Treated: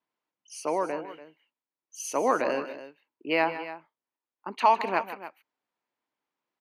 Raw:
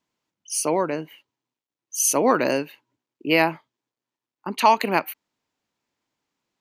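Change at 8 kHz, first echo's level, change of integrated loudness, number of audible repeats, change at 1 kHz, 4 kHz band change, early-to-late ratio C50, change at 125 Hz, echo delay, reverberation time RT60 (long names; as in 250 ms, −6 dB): −15.5 dB, −12.5 dB, −6.0 dB, 2, −4.0 dB, −9.5 dB, no reverb audible, −13.5 dB, 154 ms, no reverb audible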